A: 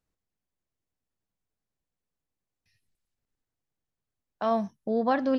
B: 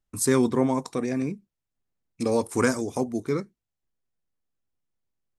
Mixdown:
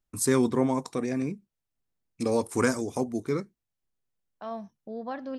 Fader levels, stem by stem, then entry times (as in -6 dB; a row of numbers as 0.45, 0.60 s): -10.5, -2.0 dB; 0.00, 0.00 s